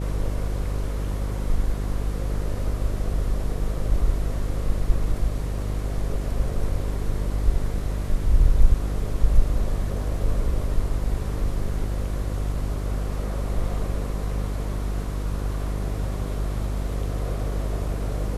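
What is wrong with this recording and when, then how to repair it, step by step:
buzz 50 Hz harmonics 12 -27 dBFS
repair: de-hum 50 Hz, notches 12

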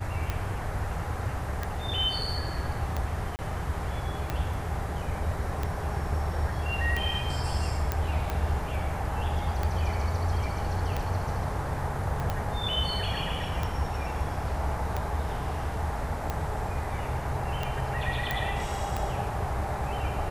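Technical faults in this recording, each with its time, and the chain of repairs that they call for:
tick 45 rpm -16 dBFS
3.36–3.39 s: dropout 29 ms
7.92 s: pop -13 dBFS
12.20 s: pop -20 dBFS
18.31 s: pop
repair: de-click; interpolate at 3.36 s, 29 ms

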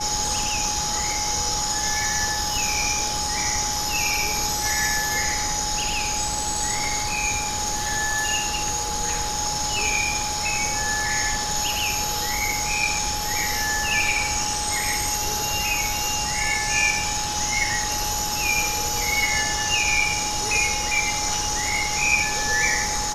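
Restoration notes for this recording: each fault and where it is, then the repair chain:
whine 840 Hz -29 dBFS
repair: band-stop 840 Hz, Q 30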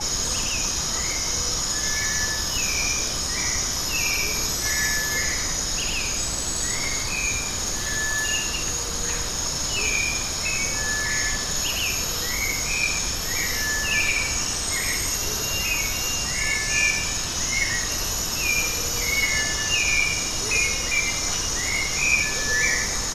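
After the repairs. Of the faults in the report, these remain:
nothing left

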